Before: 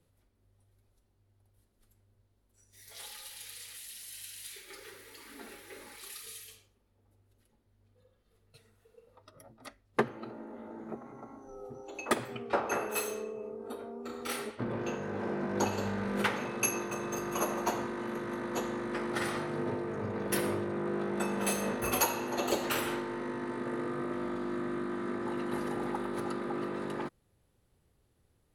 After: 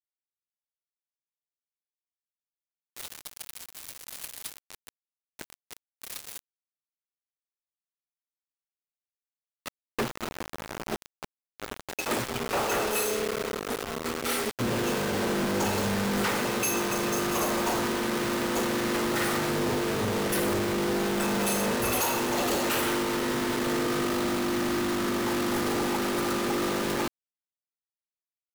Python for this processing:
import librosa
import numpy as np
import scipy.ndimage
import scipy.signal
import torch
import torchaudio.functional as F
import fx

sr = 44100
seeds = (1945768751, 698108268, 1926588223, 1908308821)

y = fx.quant_companded(x, sr, bits=2)